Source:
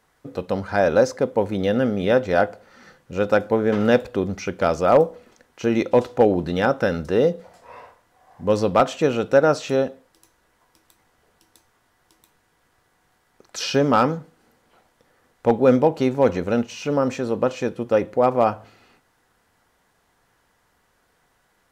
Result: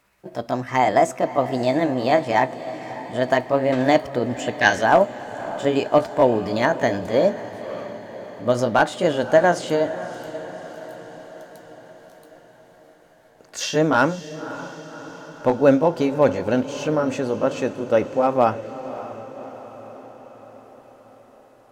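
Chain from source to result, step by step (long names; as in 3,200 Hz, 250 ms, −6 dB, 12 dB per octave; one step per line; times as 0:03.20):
pitch glide at a constant tempo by +4.5 semitones ending unshifted
feedback delay with all-pass diffusion 579 ms, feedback 60%, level −14 dB
gain on a spectral selection 0:04.62–0:04.83, 1,500–6,600 Hz +10 dB
level +1 dB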